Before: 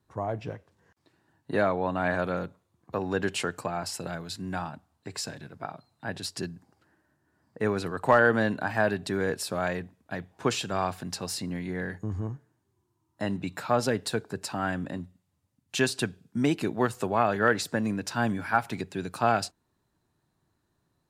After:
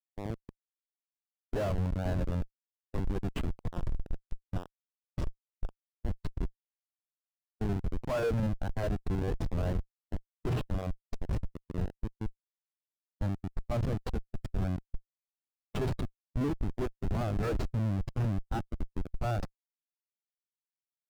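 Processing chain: Schmitt trigger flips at -26 dBFS; wow and flutter 28 cents; spectral contrast expander 1.5:1

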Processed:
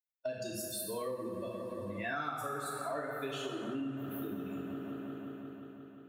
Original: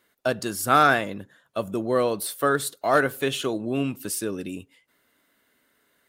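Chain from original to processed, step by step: expander on every frequency bin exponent 2; 0.62–2.41 s: reverse; 3.80–4.23 s: inverse Chebyshev band-stop 1.2–7.8 kHz, stop band 50 dB; feedback echo behind a low-pass 176 ms, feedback 77%, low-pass 2 kHz, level -11.5 dB; reverberation, pre-delay 3 ms, DRR -3 dB; compression 6:1, threshold -37 dBFS, peak gain reduction 24.5 dB

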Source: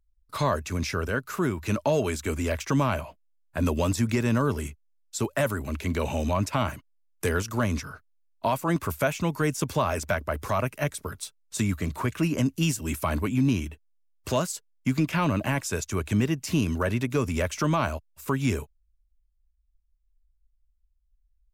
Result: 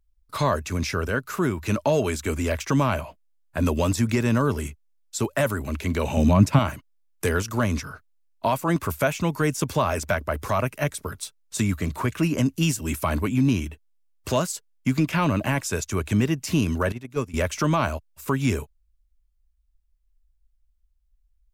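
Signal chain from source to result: 6.17–6.59 s: peaking EQ 160 Hz +12 dB 1.8 oct; 16.92–17.34 s: gate -22 dBFS, range -16 dB; trim +2.5 dB

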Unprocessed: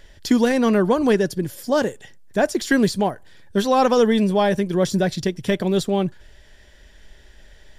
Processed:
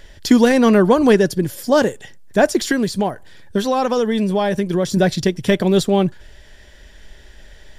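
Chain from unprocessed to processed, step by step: 2.63–4.97 s: compression, threshold -20 dBFS, peak gain reduction 8.5 dB; trim +5 dB

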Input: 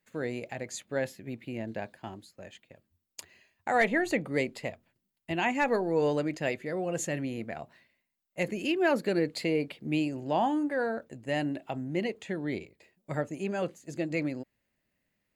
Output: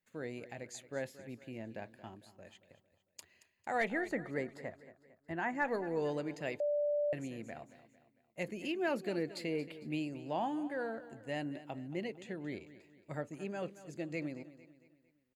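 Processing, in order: 4.01–5.65 s: resonant high shelf 2.1 kHz -6.5 dB, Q 3; feedback delay 226 ms, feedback 45%, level -15.5 dB; 6.60–7.13 s: bleep 587 Hz -21 dBFS; trim -8.5 dB

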